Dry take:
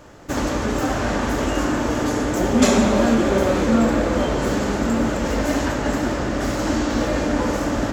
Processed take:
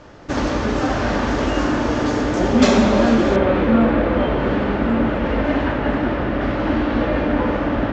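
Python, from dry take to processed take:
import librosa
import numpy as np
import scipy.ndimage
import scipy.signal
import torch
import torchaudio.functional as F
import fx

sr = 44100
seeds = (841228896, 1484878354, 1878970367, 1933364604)

y = fx.lowpass(x, sr, hz=fx.steps((0.0, 5600.0), (3.36, 3200.0)), slope=24)
y = F.gain(torch.from_numpy(y), 2.0).numpy()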